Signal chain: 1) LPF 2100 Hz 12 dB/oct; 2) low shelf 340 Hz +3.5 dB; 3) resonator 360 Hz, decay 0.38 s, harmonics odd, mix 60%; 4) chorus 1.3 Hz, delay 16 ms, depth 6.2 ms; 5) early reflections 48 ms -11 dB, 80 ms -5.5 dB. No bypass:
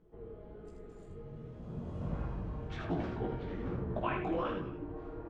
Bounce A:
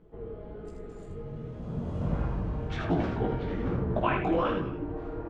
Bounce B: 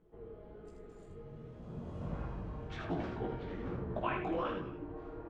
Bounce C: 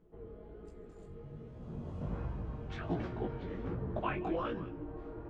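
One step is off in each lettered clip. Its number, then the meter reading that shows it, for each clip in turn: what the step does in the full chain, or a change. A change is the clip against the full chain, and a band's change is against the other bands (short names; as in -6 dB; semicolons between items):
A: 3, loudness change +7.5 LU; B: 2, 125 Hz band -2.5 dB; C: 5, echo-to-direct -4.5 dB to none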